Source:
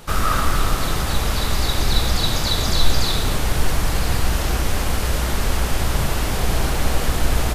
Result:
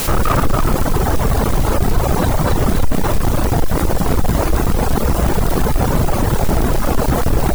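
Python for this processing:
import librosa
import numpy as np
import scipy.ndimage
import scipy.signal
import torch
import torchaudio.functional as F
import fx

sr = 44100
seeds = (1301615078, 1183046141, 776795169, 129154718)

p1 = fx.halfwave_hold(x, sr)
p2 = scipy.signal.sosfilt(scipy.signal.butter(2, 1100.0, 'lowpass', fs=sr, output='sos'), p1)
p3 = fx.low_shelf(p2, sr, hz=140.0, db=-5.0)
p4 = p3 + fx.echo_single(p3, sr, ms=287, db=-5.5, dry=0)
p5 = fx.quant_dither(p4, sr, seeds[0], bits=6, dither='triangular')
p6 = fx.dereverb_blind(p5, sr, rt60_s=1.6)
p7 = (np.mod(10.0 ** (15.0 / 20.0) * p6 + 1.0, 2.0) - 1.0) / 10.0 ** (15.0 / 20.0)
p8 = p6 + (p7 * librosa.db_to_amplitude(-11.5))
y = fx.env_flatten(p8, sr, amount_pct=50)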